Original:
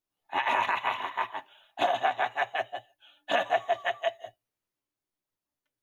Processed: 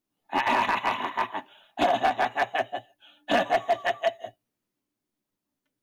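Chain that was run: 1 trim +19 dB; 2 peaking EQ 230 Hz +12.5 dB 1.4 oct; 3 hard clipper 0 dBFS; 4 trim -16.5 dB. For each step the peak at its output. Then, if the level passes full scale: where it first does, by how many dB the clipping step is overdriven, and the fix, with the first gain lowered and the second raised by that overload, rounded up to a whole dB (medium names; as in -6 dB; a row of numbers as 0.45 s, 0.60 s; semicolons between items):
+5.5 dBFS, +7.0 dBFS, 0.0 dBFS, -16.5 dBFS; step 1, 7.0 dB; step 1 +12 dB, step 4 -9.5 dB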